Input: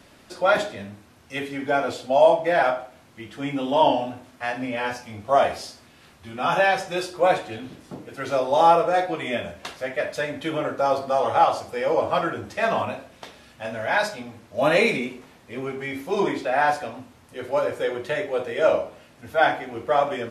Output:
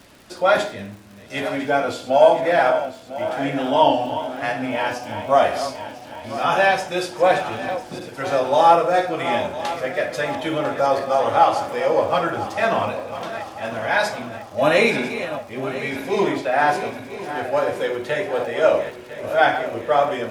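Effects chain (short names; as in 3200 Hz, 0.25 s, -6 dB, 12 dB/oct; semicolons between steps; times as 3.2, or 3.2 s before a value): regenerating reverse delay 0.5 s, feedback 71%, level -11.5 dB; crackle 110/s -40 dBFS; de-hum 82.42 Hz, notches 34; gain +3 dB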